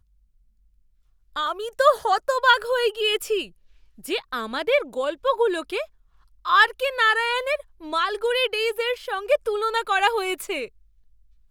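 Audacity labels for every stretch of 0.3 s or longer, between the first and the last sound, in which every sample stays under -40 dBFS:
3.470000	3.990000	silence
5.850000	6.450000	silence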